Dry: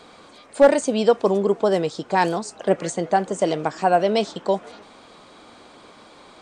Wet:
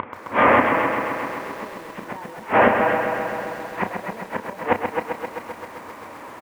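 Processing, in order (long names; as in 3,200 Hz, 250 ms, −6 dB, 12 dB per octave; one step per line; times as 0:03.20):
linear delta modulator 16 kbit/s, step −19 dBFS
in parallel at +2 dB: speech leveller 0.5 s
on the sum: brickwall limiter −6 dBFS, peak gain reduction 8 dB
gate with flip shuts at −13 dBFS, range −29 dB
loudspeaker in its box 100–2,300 Hz, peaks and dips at 100 Hz +9 dB, 150 Hz −6 dB, 240 Hz +4 dB, 550 Hz +4 dB, 970 Hz +9 dB, 1,900 Hz +4 dB
on a send: loudspeakers that aren't time-aligned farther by 11 metres −10 dB, 92 metres −9 dB
on the sum: feedback echo at a low word length 131 ms, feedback 80%, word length 8 bits, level −6 dB
level +1.5 dB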